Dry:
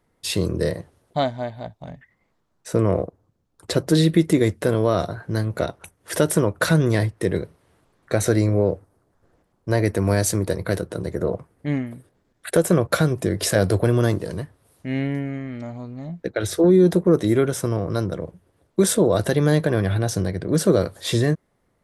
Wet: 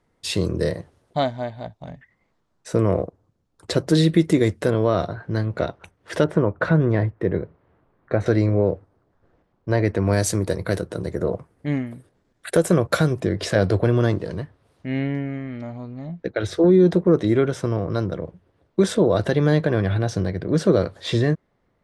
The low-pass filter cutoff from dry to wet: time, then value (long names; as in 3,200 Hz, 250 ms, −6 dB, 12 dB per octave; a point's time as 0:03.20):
8,200 Hz
from 0:04.70 4,100 Hz
from 0:06.24 1,700 Hz
from 0:08.26 3,800 Hz
from 0:10.13 9,300 Hz
from 0:13.20 4,500 Hz